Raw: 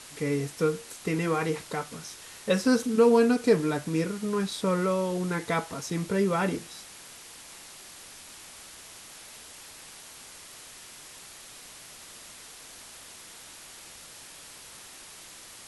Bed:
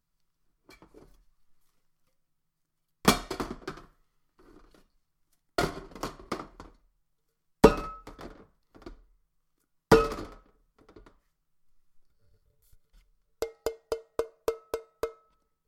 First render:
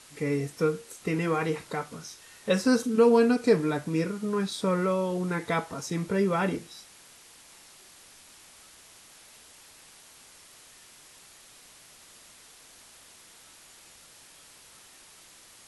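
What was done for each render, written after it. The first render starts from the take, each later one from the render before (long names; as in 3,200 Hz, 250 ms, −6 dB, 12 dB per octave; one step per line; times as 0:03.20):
noise reduction from a noise print 6 dB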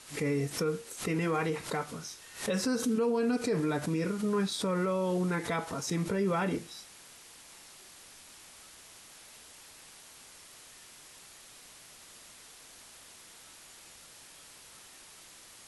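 brickwall limiter −22 dBFS, peak gain reduction 11.5 dB
background raised ahead of every attack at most 140 dB per second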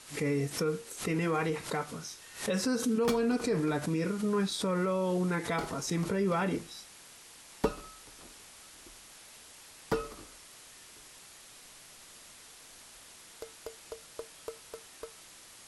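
mix in bed −12.5 dB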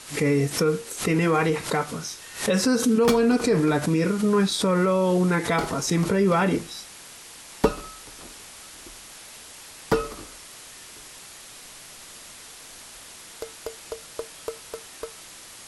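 level +9 dB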